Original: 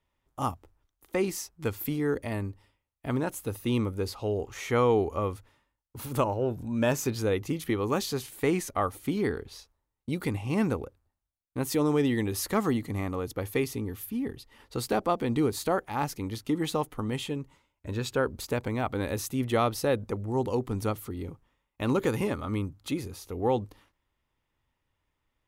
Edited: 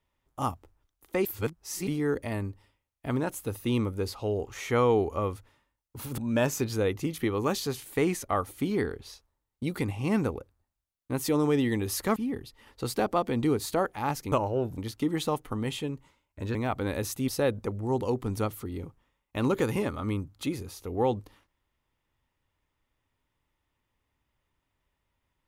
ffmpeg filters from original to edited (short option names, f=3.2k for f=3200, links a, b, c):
-filter_complex "[0:a]asplit=9[a][b][c][d][e][f][g][h][i];[a]atrim=end=1.252[j];[b]atrim=start=1.248:end=1.872,asetpts=PTS-STARTPTS,areverse[k];[c]atrim=start=1.868:end=6.182[l];[d]atrim=start=6.638:end=12.622[m];[e]atrim=start=14.088:end=16.252[n];[f]atrim=start=6.178:end=6.642[o];[g]atrim=start=16.248:end=18.022[p];[h]atrim=start=18.688:end=19.422[q];[i]atrim=start=19.728[r];[j][k]acrossfade=d=0.004:c1=hsin:c2=hsin[s];[s][l]acrossfade=d=0.004:c1=hsin:c2=hsin[t];[t][m]acrossfade=d=0.004:c1=hsin:c2=hsin[u];[u][n]acrossfade=d=0.004:c1=hsin:c2=hsin[v];[v][o]acrossfade=d=0.004:c1=hsin:c2=hsin[w];[w][p]acrossfade=d=0.004:c1=hsin:c2=hsin[x];[x][q]acrossfade=d=0.004:c1=hsin:c2=hsin[y];[y][r]acrossfade=d=0.004:c1=hsin:c2=hsin"